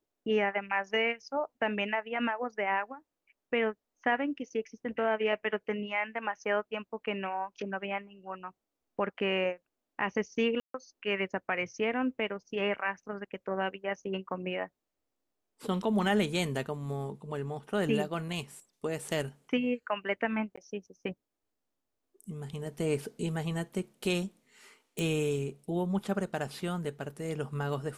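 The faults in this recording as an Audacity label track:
10.600000	10.740000	drop-out 143 ms
20.560000	20.570000	drop-out 15 ms
24.990000	24.990000	click

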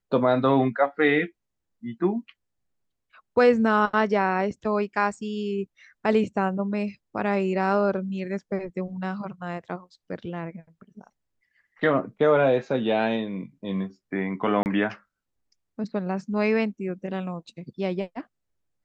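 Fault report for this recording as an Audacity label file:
14.630000	14.660000	drop-out 29 ms

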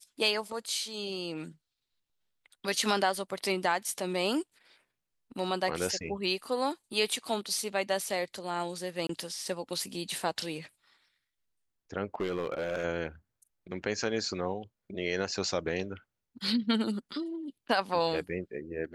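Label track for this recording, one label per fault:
9.070000	9.090000	drop-out 23 ms
12.140000	12.850000	clipping −26.5 dBFS

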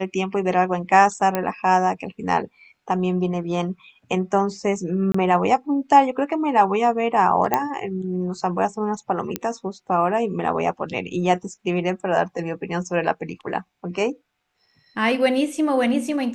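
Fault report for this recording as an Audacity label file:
1.350000	1.350000	click −8 dBFS
5.120000	5.140000	drop-out 24 ms
7.540000	7.540000	click −5 dBFS
9.360000	9.360000	click −8 dBFS

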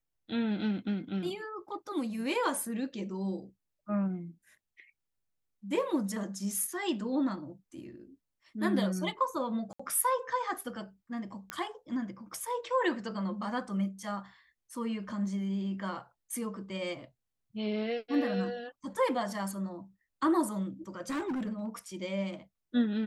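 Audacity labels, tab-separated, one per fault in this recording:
9.730000	9.790000	drop-out 65 ms
11.500000	11.500000	click −20 dBFS
21.000000	21.680000	clipping −30.5 dBFS

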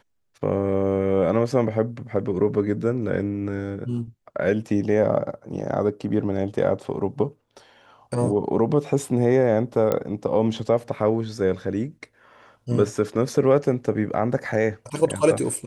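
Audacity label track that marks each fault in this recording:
9.920000	9.920000	click −10 dBFS

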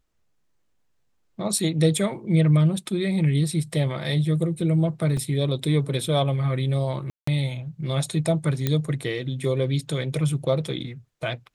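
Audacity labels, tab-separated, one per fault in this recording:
5.170000	5.170000	drop-out 3.4 ms
7.100000	7.270000	drop-out 174 ms
8.670000	8.670000	click −9 dBFS

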